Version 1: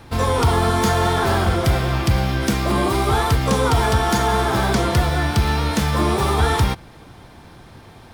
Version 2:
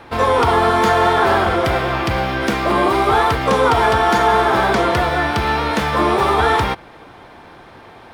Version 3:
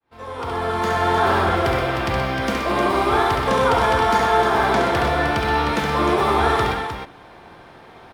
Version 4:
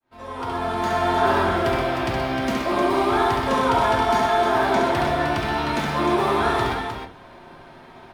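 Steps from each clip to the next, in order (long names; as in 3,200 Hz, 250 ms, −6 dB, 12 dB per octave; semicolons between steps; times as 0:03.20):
bass and treble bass −13 dB, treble −13 dB; level +6.5 dB
fade in at the beginning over 1.28 s; multi-tap delay 68/125/307 ms −5/−9/−7 dB; level −5 dB
in parallel at −10 dB: soft clipping −23.5 dBFS, distortion −7 dB; on the sum: convolution reverb RT60 0.35 s, pre-delay 3 ms, DRR 1.5 dB; level −5.5 dB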